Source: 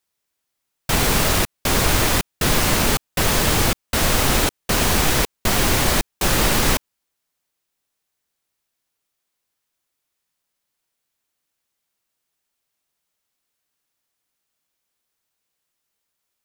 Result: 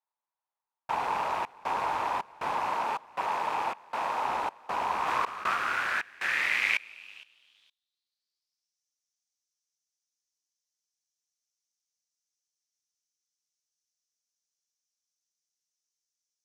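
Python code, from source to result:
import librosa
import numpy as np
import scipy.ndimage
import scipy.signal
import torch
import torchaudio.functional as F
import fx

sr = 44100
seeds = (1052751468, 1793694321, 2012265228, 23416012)

y = fx.rattle_buzz(x, sr, strikes_db=-26.0, level_db=-10.0)
y = fx.highpass(y, sr, hz=170.0, slope=6, at=(2.7, 4.27))
y = fx.echo_feedback(y, sr, ms=464, feedback_pct=21, wet_db=-23.0)
y = fx.filter_sweep_bandpass(y, sr, from_hz=920.0, to_hz=5900.0, start_s=4.86, end_s=8.82, q=5.3)
y = fx.env_flatten(y, sr, amount_pct=50, at=(5.06, 5.54), fade=0.02)
y = y * 10.0 ** (2.0 / 20.0)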